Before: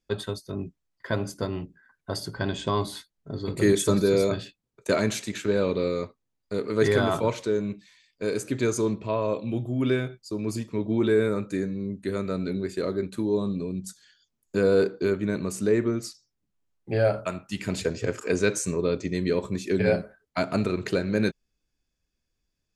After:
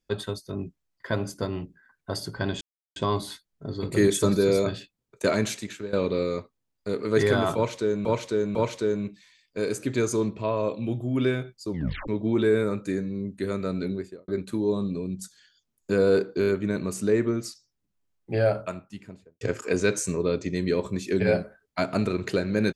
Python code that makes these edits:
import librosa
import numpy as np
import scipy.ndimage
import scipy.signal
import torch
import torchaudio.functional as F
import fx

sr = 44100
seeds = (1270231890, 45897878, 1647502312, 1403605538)

y = fx.studio_fade_out(x, sr, start_s=12.51, length_s=0.42)
y = fx.studio_fade_out(y, sr, start_s=16.97, length_s=1.03)
y = fx.edit(y, sr, fx.insert_silence(at_s=2.61, length_s=0.35),
    fx.fade_out_to(start_s=5.15, length_s=0.43, floor_db=-16.0),
    fx.repeat(start_s=7.2, length_s=0.5, count=3),
    fx.tape_stop(start_s=10.35, length_s=0.38),
    fx.stutter(start_s=15.05, slice_s=0.02, count=4), tone=tone)